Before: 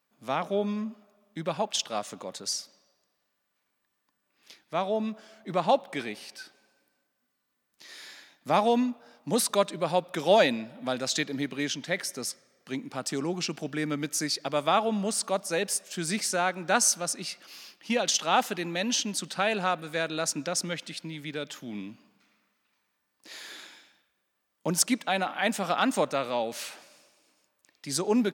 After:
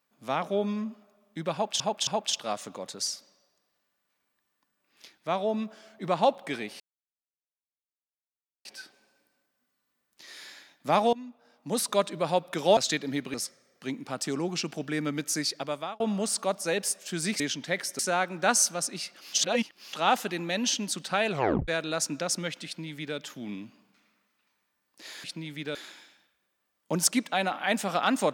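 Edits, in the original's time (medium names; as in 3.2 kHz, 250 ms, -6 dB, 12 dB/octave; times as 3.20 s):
1.53–1.80 s: loop, 3 plays
6.26 s: insert silence 1.85 s
8.74–9.68 s: fade in linear, from -21.5 dB
10.38–11.03 s: delete
11.60–12.19 s: move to 16.25 s
14.36–14.85 s: fade out
17.59–18.19 s: reverse
19.56 s: tape stop 0.38 s
20.92–21.43 s: copy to 23.50 s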